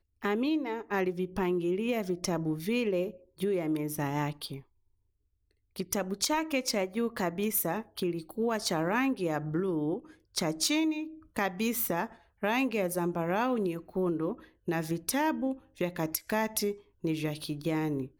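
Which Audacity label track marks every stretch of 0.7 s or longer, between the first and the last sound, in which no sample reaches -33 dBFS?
4.560000	5.760000	silence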